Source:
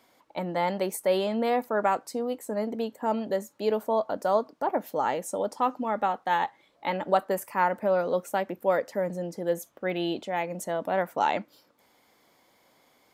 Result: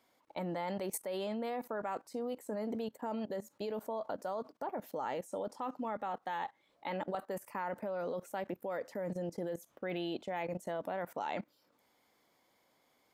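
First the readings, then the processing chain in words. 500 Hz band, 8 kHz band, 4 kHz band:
-11.0 dB, -8.5 dB, -10.5 dB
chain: level quantiser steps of 18 dB; gain -1 dB

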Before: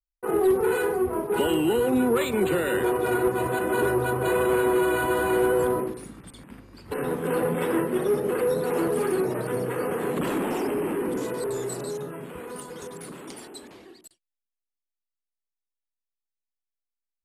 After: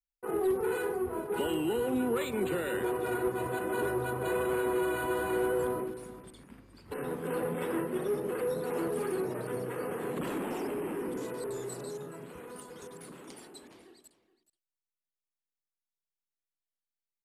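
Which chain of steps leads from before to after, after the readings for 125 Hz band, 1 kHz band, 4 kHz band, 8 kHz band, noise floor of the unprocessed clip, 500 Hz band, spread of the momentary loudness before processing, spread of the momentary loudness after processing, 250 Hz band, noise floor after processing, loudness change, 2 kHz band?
-8.0 dB, -8.0 dB, -8.0 dB, -8.0 dB, under -85 dBFS, -8.0 dB, 16 LU, 16 LU, -8.0 dB, under -85 dBFS, -8.0 dB, -8.0 dB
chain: echo 0.423 s -16.5 dB; gain -8 dB

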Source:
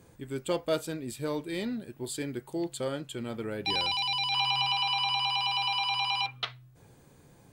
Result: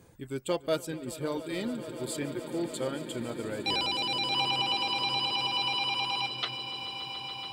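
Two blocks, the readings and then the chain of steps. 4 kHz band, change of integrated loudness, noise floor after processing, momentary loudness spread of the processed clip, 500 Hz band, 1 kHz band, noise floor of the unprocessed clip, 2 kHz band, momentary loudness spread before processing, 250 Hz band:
-0.5 dB, -1.0 dB, -48 dBFS, 9 LU, +0.5 dB, -1.5 dB, -58 dBFS, -1.0 dB, 12 LU, +0.5 dB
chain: reverb removal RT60 0.67 s; swelling echo 0.143 s, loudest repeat 8, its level -17 dB

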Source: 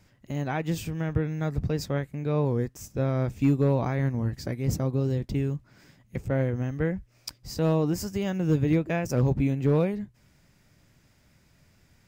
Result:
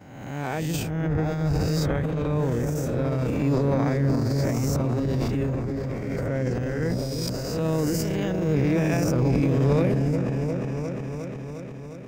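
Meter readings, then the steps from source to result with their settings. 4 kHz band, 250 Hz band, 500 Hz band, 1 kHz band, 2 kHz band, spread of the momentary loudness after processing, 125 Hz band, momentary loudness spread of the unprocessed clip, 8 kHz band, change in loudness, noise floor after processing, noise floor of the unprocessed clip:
+5.5 dB, +3.5 dB, +3.0 dB, +3.5 dB, +3.5 dB, 9 LU, +3.0 dB, 10 LU, +5.5 dB, +2.5 dB, -37 dBFS, -63 dBFS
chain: spectral swells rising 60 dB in 1.17 s; gate -47 dBFS, range -12 dB; repeats that get brighter 0.356 s, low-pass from 400 Hz, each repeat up 1 oct, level -3 dB; transient shaper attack -6 dB, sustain +8 dB; gain -1.5 dB

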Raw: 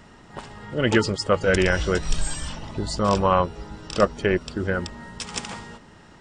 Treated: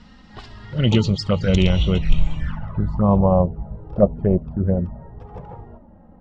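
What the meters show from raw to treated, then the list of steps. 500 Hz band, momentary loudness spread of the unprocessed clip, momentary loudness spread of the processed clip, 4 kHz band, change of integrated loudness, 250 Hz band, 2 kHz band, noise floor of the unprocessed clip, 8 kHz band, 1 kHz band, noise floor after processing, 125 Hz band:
+0.5 dB, 19 LU, 21 LU, +0.5 dB, +3.5 dB, +6.0 dB, -9.0 dB, -49 dBFS, under -10 dB, -3.5 dB, -47 dBFS, +9.0 dB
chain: resonant low shelf 240 Hz +8 dB, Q 1.5; envelope flanger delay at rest 4.4 ms, full sweep at -14 dBFS; low-pass sweep 4500 Hz -> 660 Hz, 1.54–3.35

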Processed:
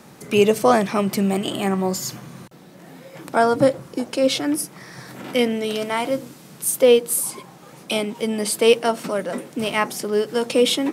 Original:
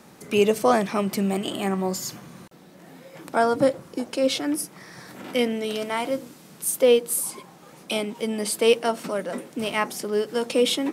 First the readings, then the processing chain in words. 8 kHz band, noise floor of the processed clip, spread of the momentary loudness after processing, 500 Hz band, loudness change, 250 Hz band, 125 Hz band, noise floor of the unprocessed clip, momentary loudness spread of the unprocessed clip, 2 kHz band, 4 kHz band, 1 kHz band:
+3.5 dB, -45 dBFS, 12 LU, +3.5 dB, +3.5 dB, +3.5 dB, +4.5 dB, -49 dBFS, 12 LU, +3.5 dB, +3.5 dB, +3.5 dB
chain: bell 130 Hz +6.5 dB 0.29 oct; gain +3.5 dB

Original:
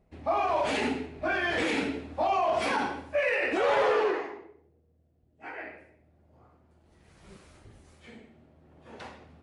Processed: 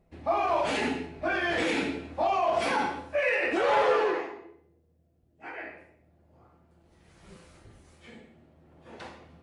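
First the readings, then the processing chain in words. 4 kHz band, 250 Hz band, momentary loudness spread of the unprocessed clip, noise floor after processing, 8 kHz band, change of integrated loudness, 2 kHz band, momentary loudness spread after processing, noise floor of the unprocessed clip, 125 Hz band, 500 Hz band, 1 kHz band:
+0.5 dB, +0.5 dB, 21 LU, -67 dBFS, n/a, +0.5 dB, +0.5 dB, 19 LU, -67 dBFS, 0.0 dB, +0.5 dB, +1.0 dB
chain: resonator 170 Hz, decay 0.46 s, harmonics all, mix 70%; gain +9 dB

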